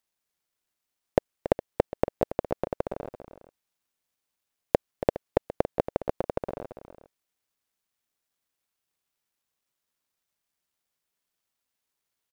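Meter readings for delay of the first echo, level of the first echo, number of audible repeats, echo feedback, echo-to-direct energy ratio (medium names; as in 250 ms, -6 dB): 280 ms, -12.0 dB, 2, no regular repeats, -10.5 dB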